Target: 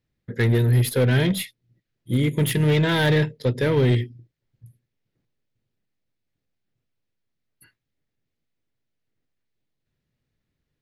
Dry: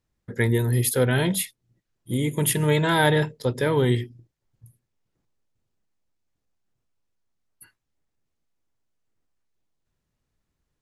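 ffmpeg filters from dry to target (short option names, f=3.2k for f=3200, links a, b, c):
-af "aeval=exprs='0.473*(cos(1*acos(clip(val(0)/0.473,-1,1)))-cos(1*PI/2))+0.0237*(cos(7*acos(clip(val(0)/0.473,-1,1)))-cos(7*PI/2))+0.00841*(cos(8*acos(clip(val(0)/0.473,-1,1)))-cos(8*PI/2))':c=same,volume=20dB,asoftclip=hard,volume=-20dB,equalizer=f=125:t=o:w=1:g=7,equalizer=f=250:t=o:w=1:g=4,equalizer=f=500:t=o:w=1:g=4,equalizer=f=1k:t=o:w=1:g=-4,equalizer=f=2k:t=o:w=1:g=6,equalizer=f=4k:t=o:w=1:g=5,equalizer=f=8k:t=o:w=1:g=-6"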